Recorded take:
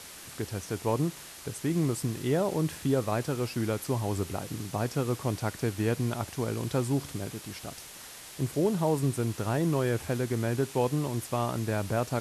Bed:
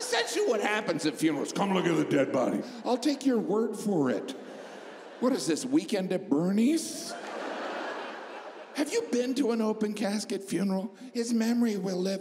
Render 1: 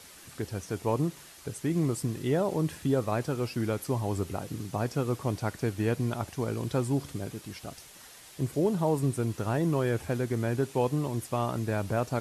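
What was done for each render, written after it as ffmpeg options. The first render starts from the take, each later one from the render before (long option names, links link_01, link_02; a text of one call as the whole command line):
ffmpeg -i in.wav -af "afftdn=noise_reduction=6:noise_floor=-46" out.wav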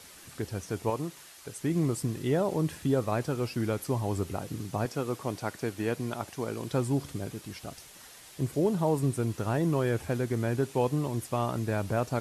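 ffmpeg -i in.wav -filter_complex "[0:a]asettb=1/sr,asplit=3[link_01][link_02][link_03];[link_01]atrim=end=0.904[link_04];[link_02]atrim=start=0.9:end=1.6,asetpts=PTS-STARTPTS,afade=type=in:duration=0.004:curve=qsin,afade=type=out:start_time=0.696:duration=0.004:curve=qsin,lowshelf=frequency=370:gain=-9[link_05];[link_03]atrim=start=1.596[link_06];[link_04][link_05]acrossfade=duration=0.004:curve1=hsin:curve2=qsin[link_07];[link_07][link_06]acrossfade=duration=0.004:curve1=qsin:curve2=hsin,asettb=1/sr,asplit=3[link_08][link_09][link_10];[link_08]atrim=end=4.854[link_11];[link_09]atrim=start=4.85:end=6.73,asetpts=PTS-STARTPTS,afade=type=in:duration=0.004:curve=qsin,afade=type=out:start_time=1.876:duration=0.004:curve=qsin,highpass=frequency=230:poles=1[link_12];[link_10]atrim=start=6.726[link_13];[link_11][link_12]acrossfade=duration=0.004:curve1=hsin:curve2=qsin[link_14];[link_14][link_13]acrossfade=duration=0.004:curve1=qsin:curve2=hsin" out.wav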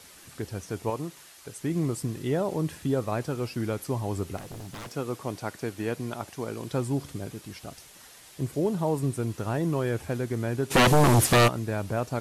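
ffmpeg -i in.wav -filter_complex "[0:a]asettb=1/sr,asplit=3[link_01][link_02][link_03];[link_01]atrim=end=4.374[link_04];[link_02]atrim=start=4.37:end=4.93,asetpts=PTS-STARTPTS,afade=type=in:duration=0.004:curve=qsin,afade=type=out:start_time=0.556:duration=0.004:curve=qsin,aeval=exprs='0.02*(abs(mod(val(0)/0.02+3,4)-2)-1)':channel_layout=same[link_05];[link_03]atrim=start=4.926[link_06];[link_04][link_05]acrossfade=duration=0.004:curve1=hsin:curve2=qsin[link_07];[link_07][link_06]acrossfade=duration=0.004:curve1=qsin:curve2=hsin,asplit=3[link_08][link_09][link_10];[link_08]afade=type=out:start_time=10.7:duration=0.02[link_11];[link_09]aeval=exprs='0.188*sin(PI/2*5.62*val(0)/0.188)':channel_layout=same,afade=type=in:start_time=10.7:duration=0.02,afade=type=out:start_time=11.47:duration=0.02[link_12];[link_10]afade=type=in:start_time=11.47:duration=0.02[link_13];[link_11][link_12][link_13]amix=inputs=3:normalize=0" out.wav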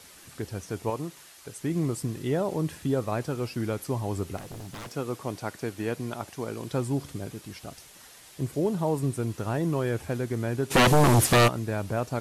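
ffmpeg -i in.wav -af anull out.wav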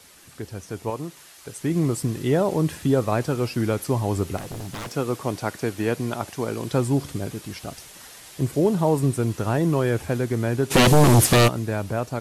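ffmpeg -i in.wav -filter_complex "[0:a]acrossover=split=590|2600[link_01][link_02][link_03];[link_02]alimiter=limit=-20.5dB:level=0:latency=1:release=194[link_04];[link_01][link_04][link_03]amix=inputs=3:normalize=0,dynaudnorm=framelen=580:gausssize=5:maxgain=6.5dB" out.wav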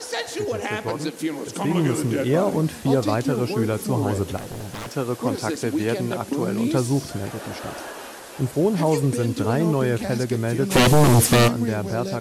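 ffmpeg -i in.wav -i bed.wav -filter_complex "[1:a]volume=0dB[link_01];[0:a][link_01]amix=inputs=2:normalize=0" out.wav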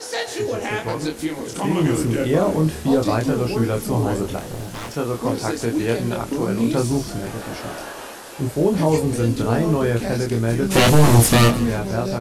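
ffmpeg -i in.wav -filter_complex "[0:a]asplit=2[link_01][link_02];[link_02]adelay=26,volume=-3dB[link_03];[link_01][link_03]amix=inputs=2:normalize=0,asplit=6[link_04][link_05][link_06][link_07][link_08][link_09];[link_05]adelay=156,afreqshift=-81,volume=-17dB[link_10];[link_06]adelay=312,afreqshift=-162,volume=-22.5dB[link_11];[link_07]adelay=468,afreqshift=-243,volume=-28dB[link_12];[link_08]adelay=624,afreqshift=-324,volume=-33.5dB[link_13];[link_09]adelay=780,afreqshift=-405,volume=-39.1dB[link_14];[link_04][link_10][link_11][link_12][link_13][link_14]amix=inputs=6:normalize=0" out.wav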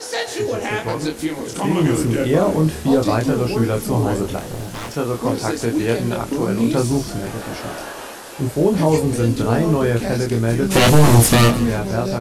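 ffmpeg -i in.wav -af "volume=2dB,alimiter=limit=-2dB:level=0:latency=1" out.wav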